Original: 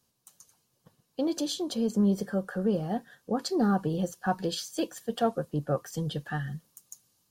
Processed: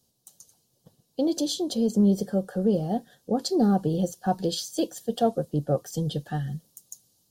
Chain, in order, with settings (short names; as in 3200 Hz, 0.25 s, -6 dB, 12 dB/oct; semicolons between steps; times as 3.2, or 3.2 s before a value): band shelf 1600 Hz -10.5 dB; gain +4 dB